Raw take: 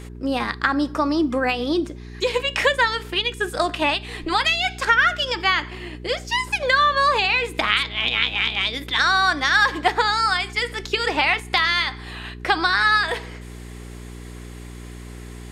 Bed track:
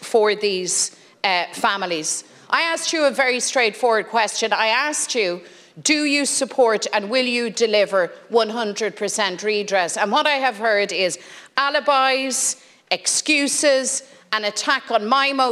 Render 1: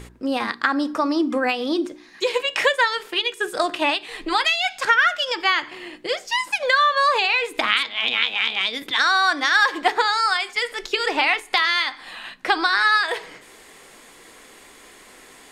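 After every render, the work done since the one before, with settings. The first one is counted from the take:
hum removal 60 Hz, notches 7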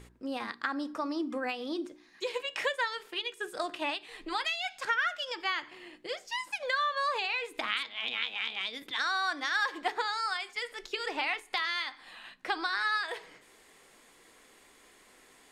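level −12.5 dB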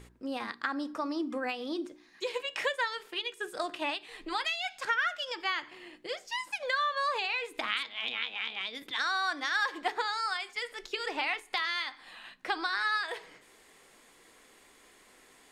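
0:08.12–0:08.75: high-shelf EQ 6,900 Hz −10.5 dB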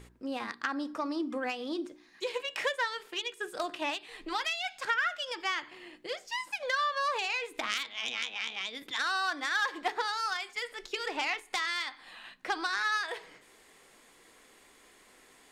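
phase distortion by the signal itself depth 0.07 ms

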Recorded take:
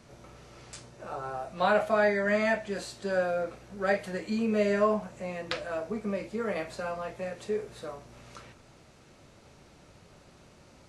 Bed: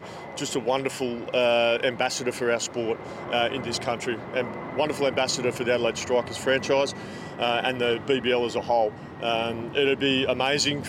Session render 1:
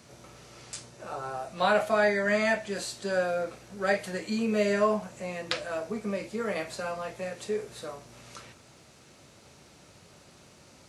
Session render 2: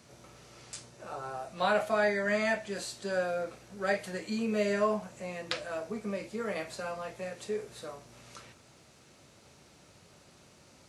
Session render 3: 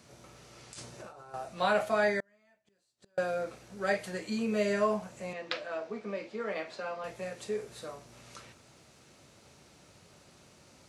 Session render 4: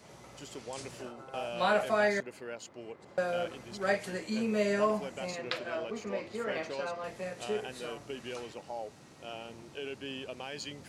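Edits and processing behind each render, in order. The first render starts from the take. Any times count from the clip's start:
high-pass filter 71 Hz; high-shelf EQ 3,300 Hz +8 dB
level −3.5 dB
0:00.73–0:01.34: compressor whose output falls as the input rises −48 dBFS; 0:02.20–0:03.18: gate with flip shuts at −34 dBFS, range −38 dB; 0:05.33–0:07.04: three-way crossover with the lows and the highs turned down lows −16 dB, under 210 Hz, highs −22 dB, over 5,300 Hz
mix in bed −18 dB

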